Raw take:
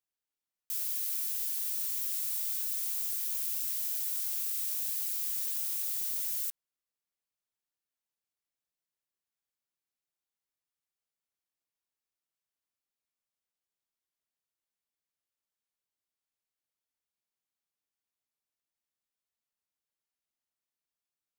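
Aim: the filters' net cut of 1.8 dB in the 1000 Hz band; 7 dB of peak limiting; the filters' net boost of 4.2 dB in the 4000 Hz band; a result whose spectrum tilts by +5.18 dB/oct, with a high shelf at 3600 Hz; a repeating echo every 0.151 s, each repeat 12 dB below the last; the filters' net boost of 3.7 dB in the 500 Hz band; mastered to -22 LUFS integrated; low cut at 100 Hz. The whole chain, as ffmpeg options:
-af "highpass=100,equalizer=f=500:t=o:g=6,equalizer=f=1k:t=o:g=-4,highshelf=f=3.6k:g=-3.5,equalizer=f=4k:t=o:g=8,alimiter=level_in=5.5dB:limit=-24dB:level=0:latency=1,volume=-5.5dB,aecho=1:1:151|302|453:0.251|0.0628|0.0157,volume=14dB"

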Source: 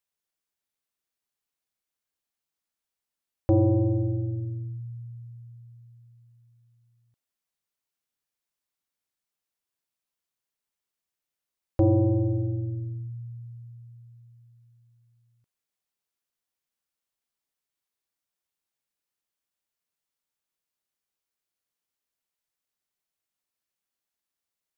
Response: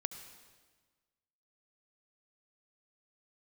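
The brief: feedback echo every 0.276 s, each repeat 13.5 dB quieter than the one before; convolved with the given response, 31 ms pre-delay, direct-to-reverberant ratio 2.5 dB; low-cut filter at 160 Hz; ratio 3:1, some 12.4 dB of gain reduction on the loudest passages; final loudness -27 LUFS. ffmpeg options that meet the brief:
-filter_complex "[0:a]highpass=160,acompressor=threshold=-36dB:ratio=3,aecho=1:1:276|552:0.211|0.0444,asplit=2[a][b];[1:a]atrim=start_sample=2205,adelay=31[c];[b][c]afir=irnorm=-1:irlink=0,volume=-2dB[d];[a][d]amix=inputs=2:normalize=0,volume=10.5dB"

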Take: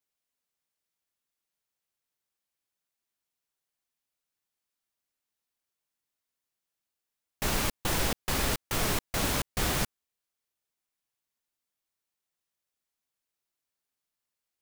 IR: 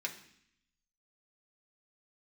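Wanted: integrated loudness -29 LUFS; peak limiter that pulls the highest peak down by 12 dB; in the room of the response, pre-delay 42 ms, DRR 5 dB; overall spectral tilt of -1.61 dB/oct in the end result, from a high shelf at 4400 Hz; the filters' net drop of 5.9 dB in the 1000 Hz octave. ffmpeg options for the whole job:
-filter_complex "[0:a]equalizer=f=1k:t=o:g=-8.5,highshelf=f=4.4k:g=8.5,alimiter=limit=-24dB:level=0:latency=1,asplit=2[a][b];[1:a]atrim=start_sample=2205,adelay=42[c];[b][c]afir=irnorm=-1:irlink=0,volume=-6.5dB[d];[a][d]amix=inputs=2:normalize=0,volume=3.5dB"

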